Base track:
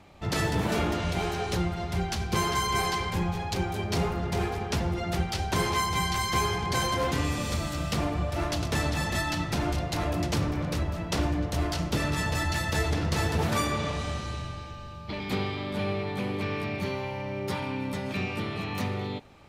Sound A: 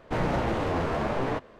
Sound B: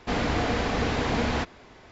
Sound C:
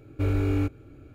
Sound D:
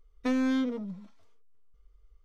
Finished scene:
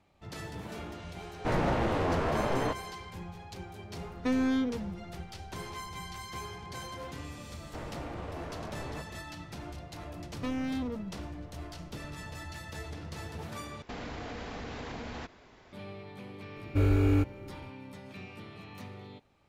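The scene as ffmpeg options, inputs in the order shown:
ffmpeg -i bed.wav -i cue0.wav -i cue1.wav -i cue2.wav -i cue3.wav -filter_complex "[1:a]asplit=2[link_01][link_02];[4:a]asplit=2[link_03][link_04];[0:a]volume=-14.5dB[link_05];[link_02]acompressor=threshold=-34dB:ratio=6:attack=3.2:release=140:knee=1:detection=peak[link_06];[link_04]asoftclip=type=hard:threshold=-29.5dB[link_07];[2:a]acompressor=threshold=-30dB:ratio=6:attack=3.2:release=140:knee=1:detection=peak[link_08];[link_05]asplit=2[link_09][link_10];[link_09]atrim=end=13.824[link_11];[link_08]atrim=end=1.91,asetpts=PTS-STARTPTS,volume=-6.5dB[link_12];[link_10]atrim=start=15.726[link_13];[link_01]atrim=end=1.59,asetpts=PTS-STARTPTS,volume=-1.5dB,afade=type=in:duration=0.004:curve=hsin,afade=type=out:start_time=1.586:duration=0.004:curve=hsin,adelay=1340[link_14];[link_03]atrim=end=2.24,asetpts=PTS-STARTPTS,volume=-1dB,afade=type=in:duration=0.004:curve=hsin,afade=type=out:start_time=2.236:duration=0.004:curve=hsin,adelay=4000[link_15];[link_06]atrim=end=1.59,asetpts=PTS-STARTPTS,volume=-4.5dB,afade=type=in:duration=0.004:curve=hsin,afade=type=out:start_time=1.586:duration=0.004:curve=hsin,adelay=7630[link_16];[link_07]atrim=end=2.24,asetpts=PTS-STARTPTS,volume=-2dB,afade=type=in:duration=0.004:curve=hsin,afade=type=out:start_time=2.236:duration=0.004:curve=hsin,adelay=448938S[link_17];[3:a]atrim=end=1.14,asetpts=PTS-STARTPTS,afade=type=in:duration=0.004:curve=hsin,afade=type=out:start_time=1.136:duration=0.004:curve=hsin,adelay=16560[link_18];[link_11][link_12]acrossfade=duration=0.004:curve1=hsin:curve2=hsin[link_19];[link_19][link_13]acrossfade=duration=0.004:curve1=hsin:curve2=hsin[link_20];[link_20][link_14][link_15][link_16][link_17][link_18]amix=inputs=6:normalize=0" out.wav

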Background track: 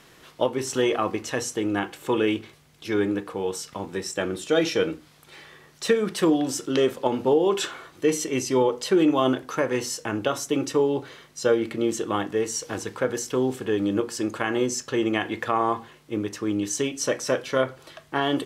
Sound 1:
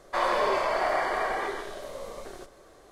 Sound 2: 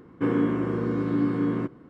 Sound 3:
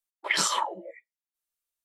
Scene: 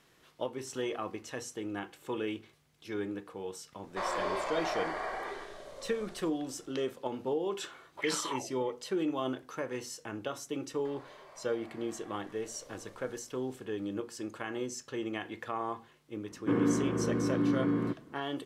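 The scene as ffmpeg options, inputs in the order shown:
ffmpeg -i bed.wav -i cue0.wav -i cue1.wav -i cue2.wav -filter_complex "[1:a]asplit=2[link_01][link_02];[0:a]volume=-12.5dB[link_03];[link_01]lowpass=9500[link_04];[link_02]acompressor=threshold=-38dB:ratio=6:attack=3.2:release=140:knee=1:detection=peak[link_05];[link_04]atrim=end=2.91,asetpts=PTS-STARTPTS,volume=-8.5dB,afade=type=in:duration=0.004:curve=hsin,afade=type=out:start_time=2.906:duration=0.004:curve=hsin,adelay=3830[link_06];[3:a]atrim=end=1.84,asetpts=PTS-STARTPTS,volume=-10dB,afade=type=in:duration=0.004:curve=hsin,afade=type=out:start_time=1.836:duration=0.004:curve=hsin,adelay=7730[link_07];[link_05]atrim=end=2.91,asetpts=PTS-STARTPTS,volume=-13.5dB,afade=type=in:duration=0.004:curve=hsin,afade=type=out:start_time=2.906:duration=0.004:curve=hsin,adelay=10720[link_08];[2:a]atrim=end=1.89,asetpts=PTS-STARTPTS,volume=-4.5dB,afade=type=in:duration=0.004:curve=hsin,afade=type=out:start_time=1.886:duration=0.004:curve=hsin,adelay=16260[link_09];[link_03][link_06][link_07][link_08][link_09]amix=inputs=5:normalize=0" out.wav

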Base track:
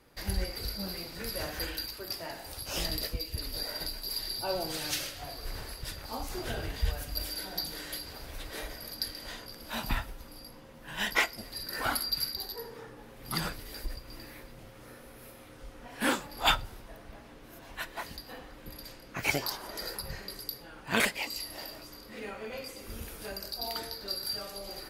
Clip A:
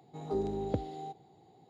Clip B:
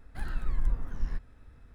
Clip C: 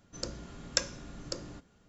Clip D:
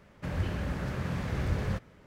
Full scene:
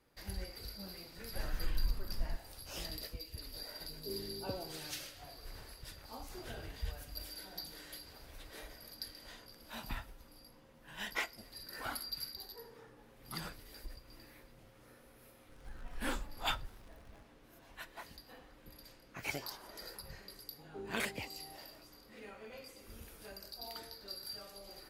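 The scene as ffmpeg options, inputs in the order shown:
ffmpeg -i bed.wav -i cue0.wav -i cue1.wav -filter_complex "[2:a]asplit=2[link_01][link_02];[1:a]asplit=2[link_03][link_04];[0:a]volume=-10.5dB[link_05];[link_01]acontrast=65[link_06];[link_03]asuperstop=centerf=1400:order=20:qfactor=0.56[link_07];[link_02]aeval=exprs='val(0)+0.5*0.0112*sgn(val(0))':channel_layout=same[link_08];[link_06]atrim=end=1.74,asetpts=PTS-STARTPTS,volume=-12.5dB,afade=type=in:duration=0.004:curve=hsin,afade=type=out:start_time=1.736:duration=0.004:curve=hsin,adelay=1180[link_09];[link_07]atrim=end=1.69,asetpts=PTS-STARTPTS,volume=-11dB,afade=type=in:duration=0.004:curve=hsin,afade=type=out:start_time=1.686:duration=0.004:curve=hsin,adelay=3750[link_10];[link_08]atrim=end=1.74,asetpts=PTS-STARTPTS,volume=-16.5dB,afade=type=in:duration=0.004:curve=hsin,afade=type=out:start_time=1.736:duration=0.004:curve=hsin,adelay=15490[link_11];[link_04]atrim=end=1.69,asetpts=PTS-STARTPTS,volume=-14dB,afade=type=in:duration=0.004:curve=hsin,afade=type=out:start_time=1.686:duration=0.004:curve=hsin,adelay=20440[link_12];[link_05][link_09][link_10][link_11][link_12]amix=inputs=5:normalize=0" out.wav

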